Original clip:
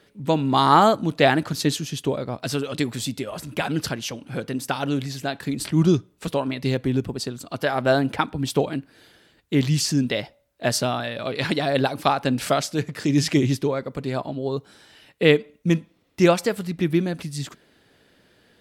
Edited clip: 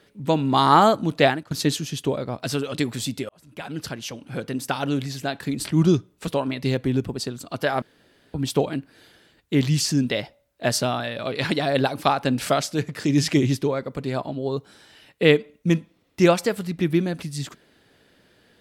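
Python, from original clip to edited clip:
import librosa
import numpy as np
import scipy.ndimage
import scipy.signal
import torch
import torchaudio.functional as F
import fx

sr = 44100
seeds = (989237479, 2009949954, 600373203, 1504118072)

y = fx.edit(x, sr, fx.fade_out_to(start_s=1.25, length_s=0.26, curve='qua', floor_db=-18.0),
    fx.fade_in_span(start_s=3.29, length_s=1.56, curve='qsin'),
    fx.room_tone_fill(start_s=7.82, length_s=0.52), tone=tone)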